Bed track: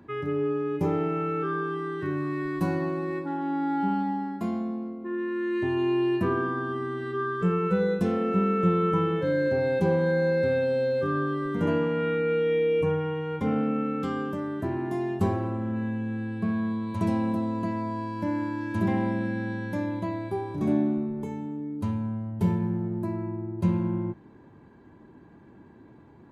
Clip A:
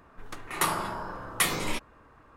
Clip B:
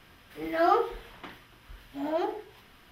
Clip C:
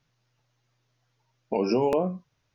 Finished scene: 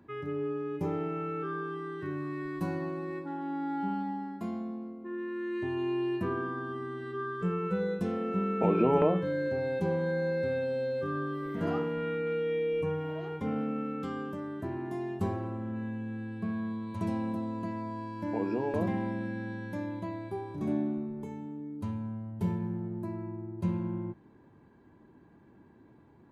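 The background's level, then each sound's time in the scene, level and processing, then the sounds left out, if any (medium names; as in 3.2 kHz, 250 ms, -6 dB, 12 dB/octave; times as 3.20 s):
bed track -6.5 dB
7.09 s: add C -2 dB + steep low-pass 2.6 kHz
11.03 s: add B -18 dB
16.81 s: add C -9 dB + low-pass 1.9 kHz
not used: A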